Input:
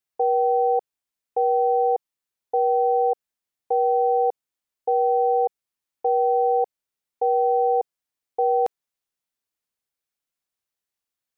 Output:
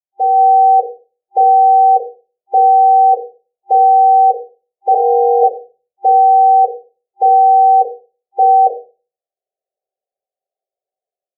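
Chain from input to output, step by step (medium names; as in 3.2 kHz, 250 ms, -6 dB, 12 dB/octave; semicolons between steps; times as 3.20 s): 4.93–5.43 s: formants replaced by sine waves; FFT band-pass 370–790 Hz; gate -54 dBFS, range -8 dB; level rider gain up to 16 dB; peak limiter -8.5 dBFS, peak gain reduction 7 dB; simulated room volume 140 m³, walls furnished, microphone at 5.5 m; trim -7.5 dB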